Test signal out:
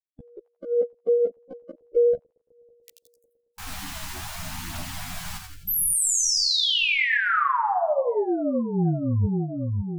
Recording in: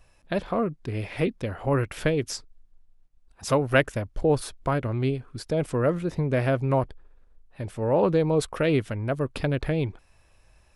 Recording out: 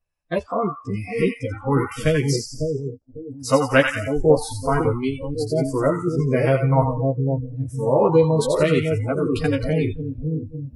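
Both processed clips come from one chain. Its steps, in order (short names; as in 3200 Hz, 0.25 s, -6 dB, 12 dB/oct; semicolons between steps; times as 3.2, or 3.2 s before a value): split-band echo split 700 Hz, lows 0.552 s, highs 86 ms, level -4.5 dB; in parallel at -12 dB: soft clip -13.5 dBFS; on the sum: chorus voices 2, 0.21 Hz, delay 13 ms, depth 2.2 ms; spectral noise reduction 28 dB; gain +5.5 dB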